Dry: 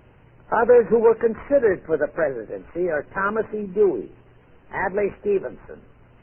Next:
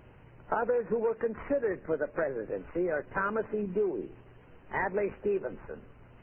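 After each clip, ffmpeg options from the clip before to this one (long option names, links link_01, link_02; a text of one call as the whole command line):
ffmpeg -i in.wav -af "acompressor=threshold=-24dB:ratio=6,volume=-2.5dB" out.wav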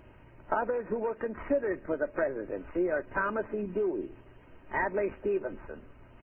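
ffmpeg -i in.wav -af "aecho=1:1:3.2:0.37" out.wav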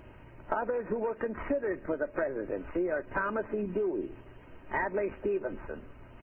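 ffmpeg -i in.wav -af "acompressor=threshold=-32dB:ratio=2.5,volume=3dB" out.wav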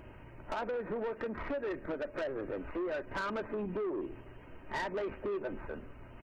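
ffmpeg -i in.wav -af "asoftclip=type=tanh:threshold=-31.5dB" out.wav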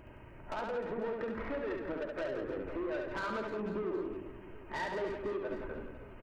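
ffmpeg -i in.wav -af "aecho=1:1:70|168|305.2|497.3|766.2:0.631|0.398|0.251|0.158|0.1,volume=-2.5dB" out.wav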